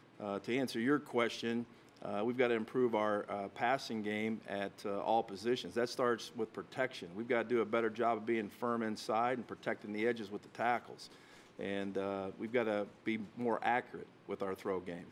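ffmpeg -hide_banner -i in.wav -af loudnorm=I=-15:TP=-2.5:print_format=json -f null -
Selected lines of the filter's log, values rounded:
"input_i" : "-37.2",
"input_tp" : "-17.2",
"input_lra" : "2.4",
"input_thresh" : "-47.4",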